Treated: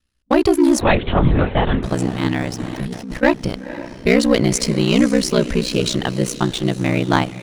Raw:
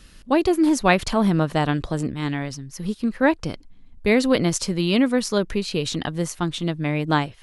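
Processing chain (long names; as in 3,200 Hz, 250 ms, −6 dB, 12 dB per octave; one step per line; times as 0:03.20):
noise gate −34 dBFS, range −19 dB
leveller curve on the samples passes 2
feedback delay with all-pass diffusion 502 ms, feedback 48%, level −14 dB
0:02.59–0:03.23: compressor whose output falls as the input rises −23 dBFS, ratio −1
ring modulation 31 Hz
0:00.81–0:01.83: linear-prediction vocoder at 8 kHz whisper
level +1 dB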